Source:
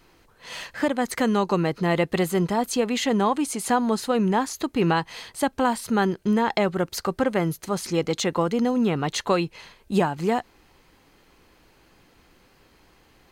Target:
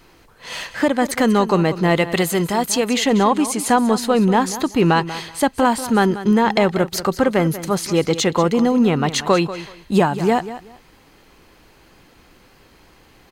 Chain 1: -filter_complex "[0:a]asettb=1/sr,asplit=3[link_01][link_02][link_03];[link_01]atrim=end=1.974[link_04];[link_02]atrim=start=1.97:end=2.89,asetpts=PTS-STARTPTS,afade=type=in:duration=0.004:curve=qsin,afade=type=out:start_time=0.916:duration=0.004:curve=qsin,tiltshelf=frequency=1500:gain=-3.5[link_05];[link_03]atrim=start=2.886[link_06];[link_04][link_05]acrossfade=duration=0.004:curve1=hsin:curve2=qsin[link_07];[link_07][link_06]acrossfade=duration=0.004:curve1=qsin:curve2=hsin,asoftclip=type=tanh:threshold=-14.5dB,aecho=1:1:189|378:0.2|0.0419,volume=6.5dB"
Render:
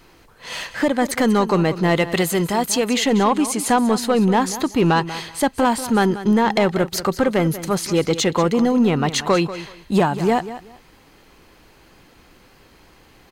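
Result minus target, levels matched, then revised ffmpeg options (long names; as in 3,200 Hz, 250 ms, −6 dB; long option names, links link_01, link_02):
soft clipping: distortion +10 dB
-filter_complex "[0:a]asettb=1/sr,asplit=3[link_01][link_02][link_03];[link_01]atrim=end=1.974[link_04];[link_02]atrim=start=1.97:end=2.89,asetpts=PTS-STARTPTS,afade=type=in:duration=0.004:curve=qsin,afade=type=out:start_time=0.916:duration=0.004:curve=qsin,tiltshelf=frequency=1500:gain=-3.5[link_05];[link_03]atrim=start=2.886[link_06];[link_04][link_05]acrossfade=duration=0.004:curve1=hsin:curve2=qsin[link_07];[link_07][link_06]acrossfade=duration=0.004:curve1=qsin:curve2=hsin,asoftclip=type=tanh:threshold=-8dB,aecho=1:1:189|378:0.2|0.0419,volume=6.5dB"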